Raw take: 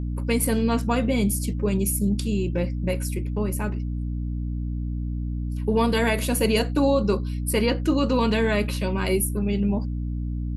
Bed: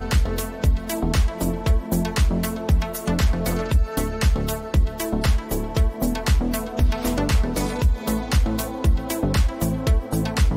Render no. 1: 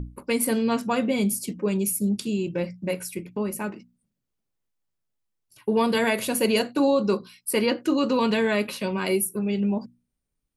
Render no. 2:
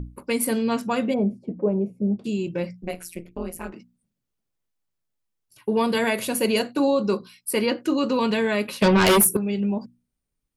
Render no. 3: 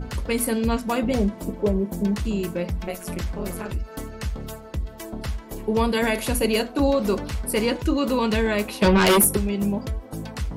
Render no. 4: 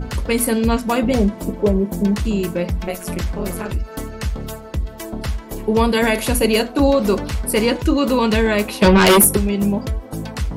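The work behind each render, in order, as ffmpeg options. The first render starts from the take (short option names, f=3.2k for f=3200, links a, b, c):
-af "bandreject=f=60:t=h:w=6,bandreject=f=120:t=h:w=6,bandreject=f=180:t=h:w=6,bandreject=f=240:t=h:w=6,bandreject=f=300:t=h:w=6"
-filter_complex "[0:a]asplit=3[a][b][c];[a]afade=t=out:st=1.13:d=0.02[d];[b]lowpass=f=690:t=q:w=2.5,afade=t=in:st=1.13:d=0.02,afade=t=out:st=2.24:d=0.02[e];[c]afade=t=in:st=2.24:d=0.02[f];[d][e][f]amix=inputs=3:normalize=0,asplit=3[g][h][i];[g]afade=t=out:st=2.81:d=0.02[j];[h]tremolo=f=170:d=0.974,afade=t=in:st=2.81:d=0.02,afade=t=out:st=3.72:d=0.02[k];[i]afade=t=in:st=3.72:d=0.02[l];[j][k][l]amix=inputs=3:normalize=0,asettb=1/sr,asplit=3[m][n][o];[m]atrim=end=8.824[p];[n]atrim=start=8.82:end=9.37,asetpts=PTS-STARTPTS,afade=t=in:d=0.004:c=qsin,afade=t=out:st=0.546:d=0.004:c=qsin,aeval=exprs='0.237*sin(PI/2*3.16*val(0)/0.237)':c=same[q];[o]atrim=start=9.366[r];[p][q]acrossfade=d=0.004:c1=hsin:c2=qsin[s];[s][r]acrossfade=d=0.004:c1=qsin:c2=hsin"
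-filter_complex "[1:a]volume=-10dB[a];[0:a][a]amix=inputs=2:normalize=0"
-af "volume=5.5dB"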